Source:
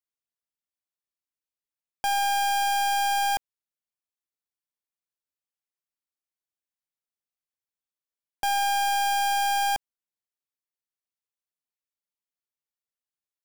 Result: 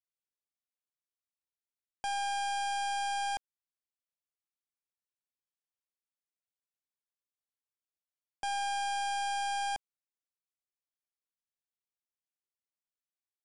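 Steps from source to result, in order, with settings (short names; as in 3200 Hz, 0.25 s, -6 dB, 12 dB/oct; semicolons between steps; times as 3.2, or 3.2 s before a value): downsampling 22050 Hz; gain -9 dB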